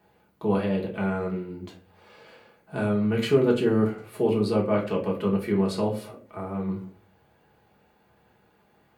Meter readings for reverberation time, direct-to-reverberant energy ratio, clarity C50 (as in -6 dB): 0.45 s, -2.5 dB, 10.0 dB